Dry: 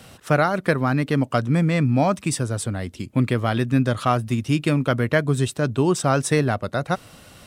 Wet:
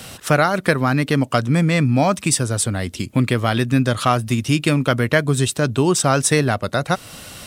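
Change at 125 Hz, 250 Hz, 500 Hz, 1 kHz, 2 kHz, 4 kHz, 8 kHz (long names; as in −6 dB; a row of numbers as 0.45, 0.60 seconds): +2.5, +2.5, +2.5, +3.5, +5.0, +7.5, +9.5 decibels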